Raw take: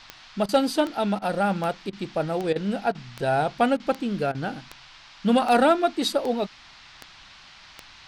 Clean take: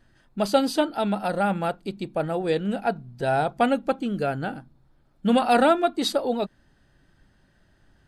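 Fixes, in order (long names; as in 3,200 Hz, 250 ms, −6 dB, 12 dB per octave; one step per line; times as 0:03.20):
clipped peaks rebuilt −10.5 dBFS
click removal
repair the gap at 0:00.46/0:01.19/0:01.90/0:02.53/0:02.92/0:03.77/0:04.32, 27 ms
noise reduction from a noise print 12 dB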